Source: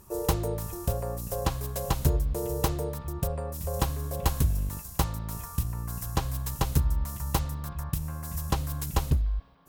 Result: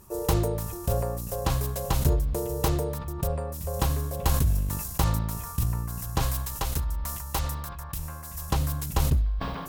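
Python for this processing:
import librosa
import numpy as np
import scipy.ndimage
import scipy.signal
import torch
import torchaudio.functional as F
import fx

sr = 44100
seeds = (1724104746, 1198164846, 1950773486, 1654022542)

y = fx.peak_eq(x, sr, hz=150.0, db=-9.5, octaves=2.6, at=(6.22, 8.51))
y = fx.sustainer(y, sr, db_per_s=35.0)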